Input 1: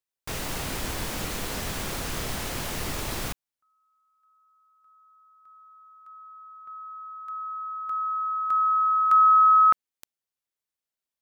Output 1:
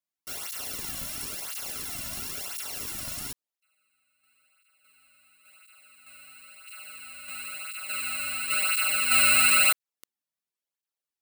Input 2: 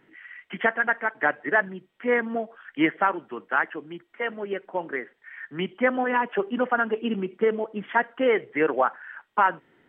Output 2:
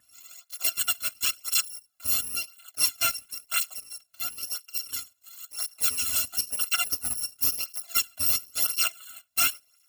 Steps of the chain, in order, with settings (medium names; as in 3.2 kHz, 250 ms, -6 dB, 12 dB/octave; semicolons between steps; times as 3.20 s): bit-reversed sample order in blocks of 256 samples; cancelling through-zero flanger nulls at 0.97 Hz, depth 2.6 ms